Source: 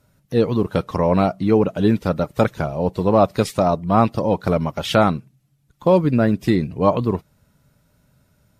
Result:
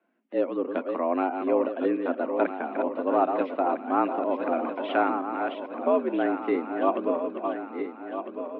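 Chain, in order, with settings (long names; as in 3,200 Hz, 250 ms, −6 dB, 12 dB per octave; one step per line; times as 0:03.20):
feedback delay that plays each chunk backwards 652 ms, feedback 65%, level −6 dB
single-sideband voice off tune +78 Hz 180–2,800 Hz
level −8 dB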